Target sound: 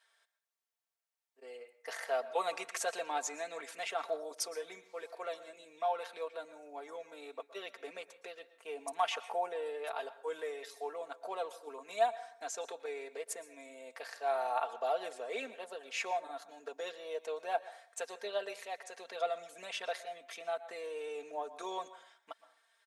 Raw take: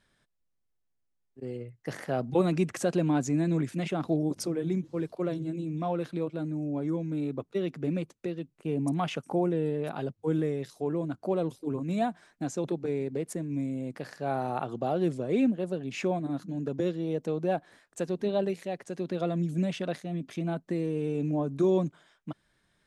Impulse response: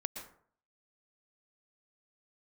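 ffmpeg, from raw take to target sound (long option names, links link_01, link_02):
-filter_complex "[0:a]highpass=frequency=590:width=0.5412,highpass=frequency=590:width=1.3066,aecho=1:1:4.4:0.7,asplit=2[link_01][link_02];[1:a]atrim=start_sample=2205,lowshelf=frequency=460:gain=-8.5[link_03];[link_02][link_03]afir=irnorm=-1:irlink=0,volume=-4.5dB[link_04];[link_01][link_04]amix=inputs=2:normalize=0,volume=-4.5dB"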